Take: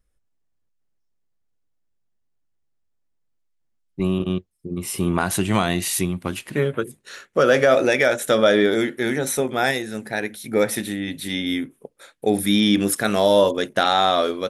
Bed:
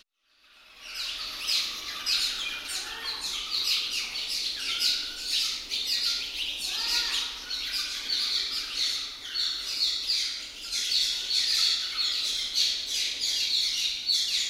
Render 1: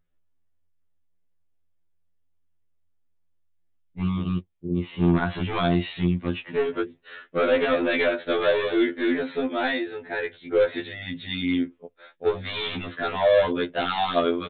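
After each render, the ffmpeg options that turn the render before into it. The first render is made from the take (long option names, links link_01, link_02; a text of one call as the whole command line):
ffmpeg -i in.wav -af "aresample=8000,asoftclip=type=hard:threshold=-15.5dB,aresample=44100,afftfilt=real='re*2*eq(mod(b,4),0)':imag='im*2*eq(mod(b,4),0)':win_size=2048:overlap=0.75" out.wav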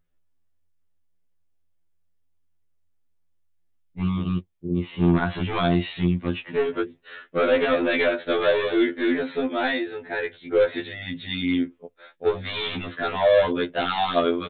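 ffmpeg -i in.wav -af "volume=1dB" out.wav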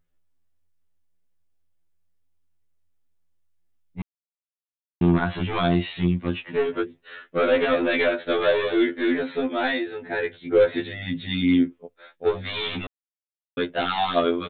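ffmpeg -i in.wav -filter_complex "[0:a]asettb=1/sr,asplit=3[link_01][link_02][link_03];[link_01]atrim=end=10.024[link_04];[link_02]atrim=start=10.02:end=11.73,asetpts=PTS-STARTPTS,afade=type=in:duration=0.004:curve=qsin,afade=type=out:start_time=1.706:duration=0.004:curve=qsin,equalizer=frequency=160:width=0.52:gain=6[link_05];[link_03]atrim=start=11.726[link_06];[link_04][link_05]acrossfade=duration=0.004:curve1=hsin:curve2=qsin[link_07];[link_07][link_06]acrossfade=duration=0.004:curve1=qsin:curve2=hsin,asplit=5[link_08][link_09][link_10][link_11][link_12];[link_08]atrim=end=4.02,asetpts=PTS-STARTPTS,afade=type=out:start_time=4.016:duration=0.004:curve=hsin[link_13];[link_09]atrim=start=4.02:end=5.01,asetpts=PTS-STARTPTS,volume=0[link_14];[link_10]atrim=start=5.01:end=12.87,asetpts=PTS-STARTPTS,afade=type=in:duration=0.004:curve=hsin,afade=type=out:start_time=7.856:duration=0.004:curve=hsin[link_15];[link_11]atrim=start=12.87:end=13.57,asetpts=PTS-STARTPTS,volume=0[link_16];[link_12]atrim=start=13.57,asetpts=PTS-STARTPTS,afade=type=in:duration=0.004:curve=hsin[link_17];[link_13][link_14][link_15][link_16][link_17]concat=n=5:v=0:a=1" out.wav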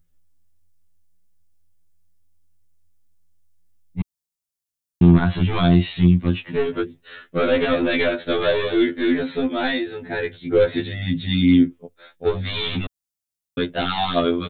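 ffmpeg -i in.wav -af "bass=frequency=250:gain=10,treble=frequency=4000:gain=10" out.wav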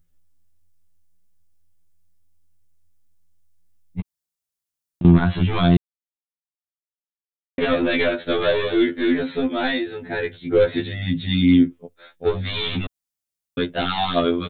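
ffmpeg -i in.wav -filter_complex "[0:a]asettb=1/sr,asplit=3[link_01][link_02][link_03];[link_01]atrim=end=4.004[link_04];[link_02]atrim=start=4:end=5.05,asetpts=PTS-STARTPTS,afade=type=in:duration=0.004:curve=qsin,afade=type=out:start_time=1.046:duration=0.004:curve=qsin,acompressor=threshold=-26dB:ratio=6:attack=3.2:release=140:knee=1:detection=peak[link_05];[link_03]atrim=start=5.046[link_06];[link_04][link_05]acrossfade=duration=0.004:curve1=hsin:curve2=qsin[link_07];[link_07][link_06]acrossfade=duration=0.004:curve1=qsin:curve2=hsin,asplit=3[link_08][link_09][link_10];[link_08]atrim=end=5.77,asetpts=PTS-STARTPTS,afade=type=out:start_time=5.766:duration=0.004:curve=hsin[link_11];[link_09]atrim=start=5.77:end=7.58,asetpts=PTS-STARTPTS,volume=0[link_12];[link_10]atrim=start=7.58,asetpts=PTS-STARTPTS,afade=type=in:duration=0.004:curve=hsin[link_13];[link_11][link_12][link_13]concat=n=3:v=0:a=1" out.wav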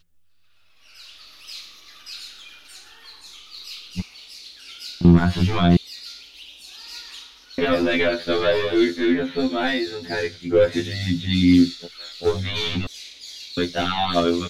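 ffmpeg -i in.wav -i bed.wav -filter_complex "[1:a]volume=-10.5dB[link_01];[0:a][link_01]amix=inputs=2:normalize=0" out.wav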